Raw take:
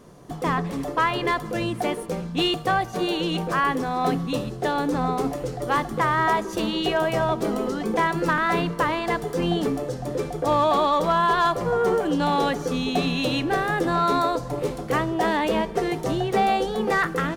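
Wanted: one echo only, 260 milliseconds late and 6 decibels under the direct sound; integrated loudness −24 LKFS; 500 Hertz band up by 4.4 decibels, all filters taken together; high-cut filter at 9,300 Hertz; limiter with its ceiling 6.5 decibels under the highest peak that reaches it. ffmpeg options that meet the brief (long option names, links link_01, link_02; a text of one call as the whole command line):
ffmpeg -i in.wav -af "lowpass=9300,equalizer=frequency=500:width_type=o:gain=5.5,alimiter=limit=-14.5dB:level=0:latency=1,aecho=1:1:260:0.501,volume=-1dB" out.wav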